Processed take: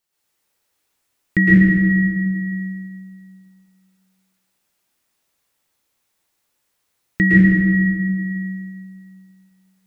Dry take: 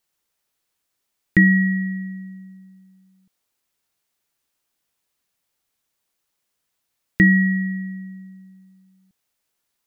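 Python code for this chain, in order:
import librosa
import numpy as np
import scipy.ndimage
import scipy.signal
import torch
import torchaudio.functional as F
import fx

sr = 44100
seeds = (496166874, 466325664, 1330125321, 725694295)

y = fx.rev_plate(x, sr, seeds[0], rt60_s=2.1, hf_ratio=0.65, predelay_ms=100, drr_db=-8.5)
y = F.gain(torch.from_numpy(y), -2.5).numpy()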